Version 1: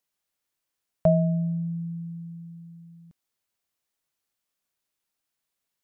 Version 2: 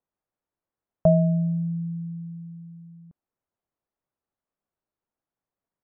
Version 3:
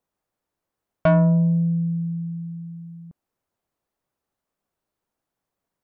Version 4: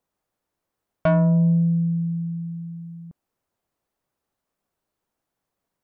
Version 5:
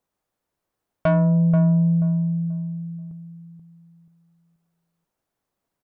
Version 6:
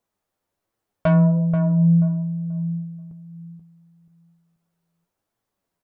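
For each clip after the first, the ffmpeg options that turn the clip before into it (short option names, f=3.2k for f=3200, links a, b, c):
-af "lowpass=1k,volume=2.5dB"
-af "asoftclip=type=tanh:threshold=-19dB,volume=7dB"
-af "alimiter=limit=-15.5dB:level=0:latency=1,volume=1.5dB"
-filter_complex "[0:a]asplit=2[a][b];[b]adelay=483,lowpass=f=930:p=1,volume=-6dB,asplit=2[c][d];[d]adelay=483,lowpass=f=930:p=1,volume=0.29,asplit=2[e][f];[f]adelay=483,lowpass=f=930:p=1,volume=0.29,asplit=2[g][h];[h]adelay=483,lowpass=f=930:p=1,volume=0.29[i];[a][c][e][g][i]amix=inputs=5:normalize=0"
-af "flanger=delay=8.8:depth=2.9:regen=45:speed=1.3:shape=sinusoidal,volume=4.5dB"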